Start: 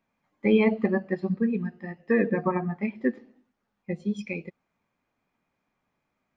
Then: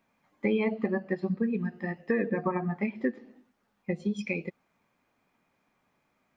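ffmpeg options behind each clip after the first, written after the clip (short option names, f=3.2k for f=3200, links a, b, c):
-af "lowshelf=f=110:g=-6,acompressor=threshold=-33dB:ratio=3,volume=5.5dB"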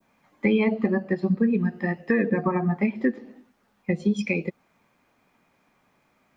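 -filter_complex "[0:a]adynamicequalizer=threshold=0.00501:dfrequency=2100:dqfactor=0.74:tfrequency=2100:tqfactor=0.74:attack=5:release=100:ratio=0.375:range=2.5:mode=cutabove:tftype=bell,acrossover=split=340|960[a][b][c];[b]alimiter=level_in=7.5dB:limit=-24dB:level=0:latency=1,volume=-7.5dB[d];[a][d][c]amix=inputs=3:normalize=0,volume=7.5dB"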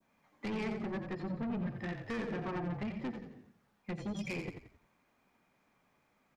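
-filter_complex "[0:a]asoftclip=type=tanh:threshold=-26.5dB,asplit=5[a][b][c][d][e];[b]adelay=88,afreqshift=-36,volume=-7.5dB[f];[c]adelay=176,afreqshift=-72,volume=-15.7dB[g];[d]adelay=264,afreqshift=-108,volume=-23.9dB[h];[e]adelay=352,afreqshift=-144,volume=-32dB[i];[a][f][g][h][i]amix=inputs=5:normalize=0,volume=-8dB"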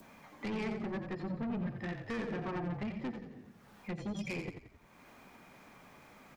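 -af "acompressor=mode=upward:threshold=-42dB:ratio=2.5"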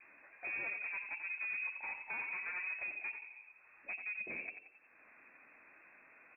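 -af "lowpass=f=2.3k:t=q:w=0.5098,lowpass=f=2.3k:t=q:w=0.6013,lowpass=f=2.3k:t=q:w=0.9,lowpass=f=2.3k:t=q:w=2.563,afreqshift=-2700,volume=-4dB"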